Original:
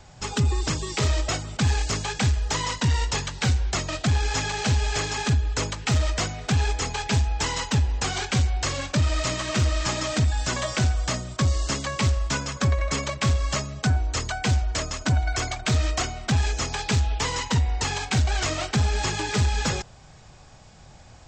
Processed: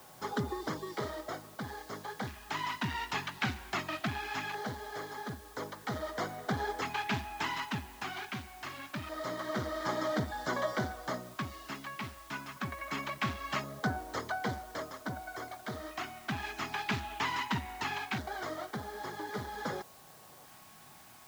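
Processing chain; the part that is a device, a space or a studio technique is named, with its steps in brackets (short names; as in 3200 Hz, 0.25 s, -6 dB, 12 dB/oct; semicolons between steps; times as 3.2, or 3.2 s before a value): shortwave radio (BPF 250–2600 Hz; tremolo 0.29 Hz, depth 60%; LFO notch square 0.22 Hz 500–2600 Hz; whine 1100 Hz -61 dBFS; white noise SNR 20 dB); gain -2 dB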